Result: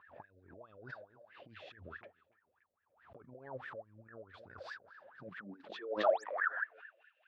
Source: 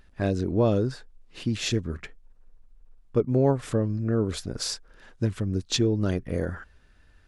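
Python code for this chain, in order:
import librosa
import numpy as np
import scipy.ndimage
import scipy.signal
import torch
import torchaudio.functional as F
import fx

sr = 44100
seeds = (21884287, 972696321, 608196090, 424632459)

p1 = fx.filter_sweep_highpass(x, sr, from_hz=92.0, to_hz=2700.0, start_s=5.0, end_s=6.84, q=5.6)
p2 = fx.dynamic_eq(p1, sr, hz=1200.0, q=0.72, threshold_db=-39.0, ratio=4.0, max_db=-7)
p3 = fx.spec_paint(p2, sr, seeds[0], shape='rise', start_s=6.02, length_s=0.22, low_hz=430.0, high_hz=8500.0, level_db=-37.0)
p4 = fx.high_shelf_res(p3, sr, hz=5000.0, db=-13.5, q=1.5)
p5 = p4 + fx.echo_tape(p4, sr, ms=287, feedback_pct=26, wet_db=-22.5, lp_hz=5100.0, drive_db=12.0, wow_cents=5, dry=0)
p6 = fx.over_compress(p5, sr, threshold_db=-24.0, ratio=-0.5)
p7 = fx.wah_lfo(p6, sr, hz=4.7, low_hz=540.0, high_hz=1800.0, q=19.0)
p8 = fx.pre_swell(p7, sr, db_per_s=98.0)
y = p8 * 10.0 ** (6.0 / 20.0)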